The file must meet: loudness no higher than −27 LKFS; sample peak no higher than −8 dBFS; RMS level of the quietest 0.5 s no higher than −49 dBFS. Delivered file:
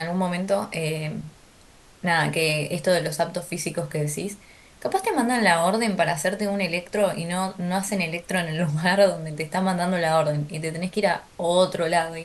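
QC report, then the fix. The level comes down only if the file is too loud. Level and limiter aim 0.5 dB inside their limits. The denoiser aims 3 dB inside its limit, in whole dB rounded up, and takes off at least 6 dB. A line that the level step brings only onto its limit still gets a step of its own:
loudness −24.0 LKFS: out of spec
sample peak −6.5 dBFS: out of spec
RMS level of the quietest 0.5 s −52 dBFS: in spec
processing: level −3.5 dB

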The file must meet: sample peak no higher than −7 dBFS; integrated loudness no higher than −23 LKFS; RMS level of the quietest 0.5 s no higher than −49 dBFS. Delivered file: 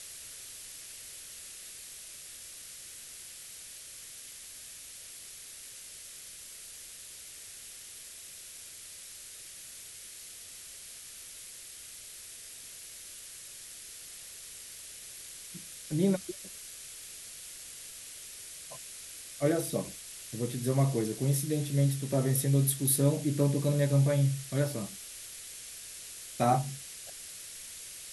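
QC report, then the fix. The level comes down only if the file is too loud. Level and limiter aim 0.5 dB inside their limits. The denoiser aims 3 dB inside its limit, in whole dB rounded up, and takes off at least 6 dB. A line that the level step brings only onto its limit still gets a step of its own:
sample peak −14.0 dBFS: in spec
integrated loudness −35.0 LKFS: in spec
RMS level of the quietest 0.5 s −47 dBFS: out of spec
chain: broadband denoise 6 dB, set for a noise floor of −47 dBFS

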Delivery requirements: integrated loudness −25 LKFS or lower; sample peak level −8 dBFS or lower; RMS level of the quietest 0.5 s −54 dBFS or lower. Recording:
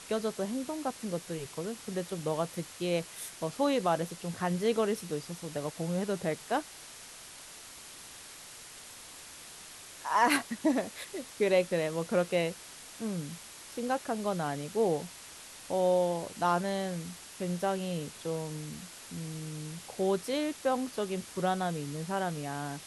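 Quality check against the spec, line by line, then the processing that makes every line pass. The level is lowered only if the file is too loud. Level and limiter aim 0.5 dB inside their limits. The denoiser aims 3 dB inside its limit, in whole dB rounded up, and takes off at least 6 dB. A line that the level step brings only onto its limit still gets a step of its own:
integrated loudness −32.5 LKFS: in spec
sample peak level −13.0 dBFS: in spec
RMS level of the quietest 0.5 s −49 dBFS: out of spec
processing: broadband denoise 8 dB, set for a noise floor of −49 dBFS

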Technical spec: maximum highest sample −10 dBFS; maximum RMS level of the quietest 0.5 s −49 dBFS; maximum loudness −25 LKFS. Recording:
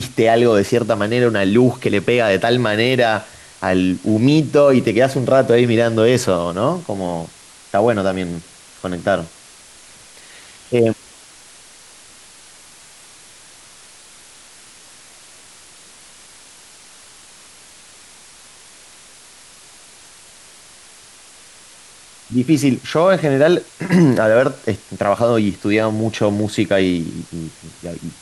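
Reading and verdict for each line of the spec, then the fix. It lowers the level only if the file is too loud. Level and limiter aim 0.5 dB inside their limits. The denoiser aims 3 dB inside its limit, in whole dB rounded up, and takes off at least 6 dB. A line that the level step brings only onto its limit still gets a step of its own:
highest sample −3.5 dBFS: out of spec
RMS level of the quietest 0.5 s −44 dBFS: out of spec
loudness −16.5 LKFS: out of spec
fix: level −9 dB

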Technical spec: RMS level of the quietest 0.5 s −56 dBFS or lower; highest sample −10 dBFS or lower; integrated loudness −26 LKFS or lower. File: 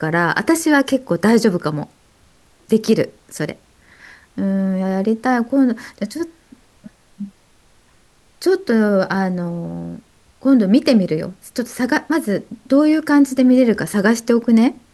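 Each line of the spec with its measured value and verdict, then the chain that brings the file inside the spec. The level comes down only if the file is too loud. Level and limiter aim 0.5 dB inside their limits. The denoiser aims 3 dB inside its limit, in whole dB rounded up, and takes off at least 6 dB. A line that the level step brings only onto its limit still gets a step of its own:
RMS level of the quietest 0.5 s −53 dBFS: out of spec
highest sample −3.0 dBFS: out of spec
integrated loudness −17.5 LKFS: out of spec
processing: level −9 dB

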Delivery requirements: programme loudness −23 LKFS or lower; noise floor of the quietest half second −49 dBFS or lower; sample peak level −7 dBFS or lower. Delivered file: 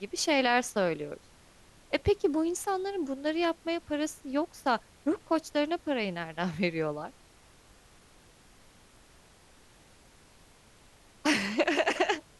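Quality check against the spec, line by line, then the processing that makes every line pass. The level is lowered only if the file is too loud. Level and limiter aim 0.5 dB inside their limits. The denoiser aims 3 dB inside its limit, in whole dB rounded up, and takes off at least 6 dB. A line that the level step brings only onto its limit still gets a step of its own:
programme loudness −30.0 LKFS: in spec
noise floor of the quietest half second −58 dBFS: in spec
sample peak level −12.0 dBFS: in spec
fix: no processing needed

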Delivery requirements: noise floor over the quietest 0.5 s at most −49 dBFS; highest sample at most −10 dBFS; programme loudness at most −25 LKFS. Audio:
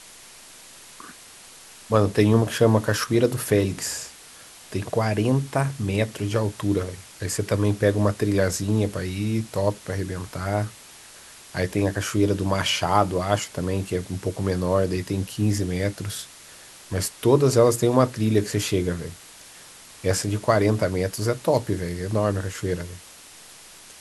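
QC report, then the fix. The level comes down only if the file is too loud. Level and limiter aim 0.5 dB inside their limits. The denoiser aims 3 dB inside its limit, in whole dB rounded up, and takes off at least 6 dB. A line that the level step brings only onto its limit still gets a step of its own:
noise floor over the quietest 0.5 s −46 dBFS: out of spec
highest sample −4.0 dBFS: out of spec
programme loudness −23.5 LKFS: out of spec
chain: broadband denoise 6 dB, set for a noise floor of −46 dBFS
level −2 dB
brickwall limiter −10.5 dBFS

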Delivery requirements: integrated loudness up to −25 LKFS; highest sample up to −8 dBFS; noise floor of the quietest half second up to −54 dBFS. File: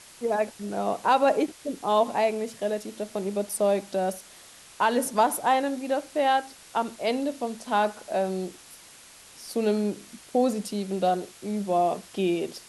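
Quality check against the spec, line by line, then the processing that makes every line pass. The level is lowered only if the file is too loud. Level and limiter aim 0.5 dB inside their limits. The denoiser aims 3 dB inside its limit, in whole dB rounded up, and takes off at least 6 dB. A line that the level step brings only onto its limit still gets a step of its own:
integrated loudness −26.5 LKFS: in spec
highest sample −9.5 dBFS: in spec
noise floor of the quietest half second −50 dBFS: out of spec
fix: broadband denoise 7 dB, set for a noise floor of −50 dBFS

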